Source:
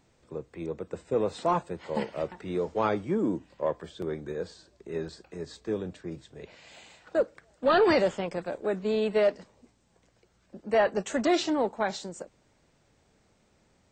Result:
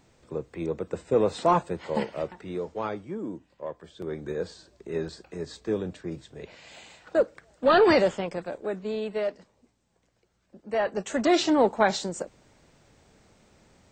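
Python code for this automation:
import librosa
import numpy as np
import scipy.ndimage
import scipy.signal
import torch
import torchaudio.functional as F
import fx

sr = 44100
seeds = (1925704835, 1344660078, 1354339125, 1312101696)

y = fx.gain(x, sr, db=fx.line((1.76, 4.5), (3.1, -7.0), (3.77, -7.0), (4.29, 3.0), (7.97, 3.0), (9.13, -5.0), (10.62, -5.0), (11.68, 7.0)))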